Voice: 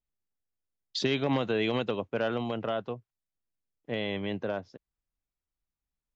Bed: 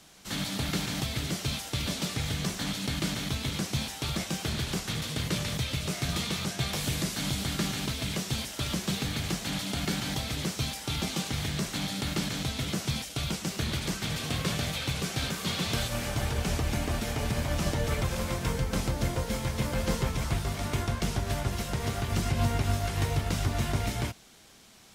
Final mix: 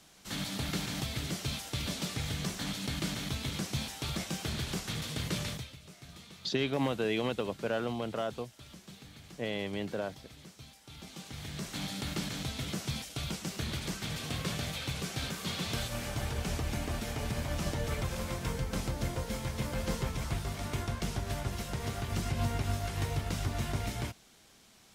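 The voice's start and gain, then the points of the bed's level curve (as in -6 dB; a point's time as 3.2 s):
5.50 s, -3.0 dB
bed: 5.49 s -4 dB
5.77 s -20 dB
10.81 s -20 dB
11.81 s -5 dB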